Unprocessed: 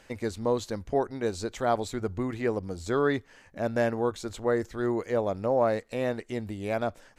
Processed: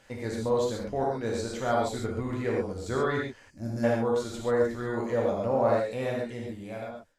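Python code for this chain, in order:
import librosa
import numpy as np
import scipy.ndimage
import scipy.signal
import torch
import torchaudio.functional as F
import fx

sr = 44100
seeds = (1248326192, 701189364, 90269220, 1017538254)

y = fx.fade_out_tail(x, sr, length_s=1.18)
y = fx.rev_gated(y, sr, seeds[0], gate_ms=160, shape='flat', drr_db=-3.0)
y = fx.spec_box(y, sr, start_s=3.5, length_s=0.34, low_hz=370.0, high_hz=4100.0, gain_db=-16)
y = y * 10.0 ** (-4.5 / 20.0)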